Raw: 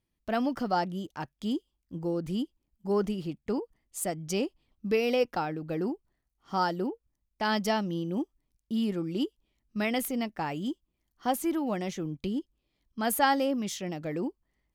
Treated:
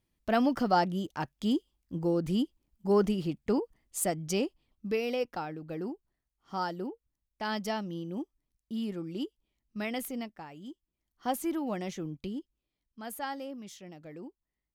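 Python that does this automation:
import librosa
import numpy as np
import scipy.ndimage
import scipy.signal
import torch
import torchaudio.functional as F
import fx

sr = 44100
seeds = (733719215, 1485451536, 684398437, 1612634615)

y = fx.gain(x, sr, db=fx.line((3.99, 2.5), (5.15, -5.5), (10.19, -5.5), (10.49, -14.5), (11.3, -3.0), (12.05, -3.0), (13.03, -12.5)))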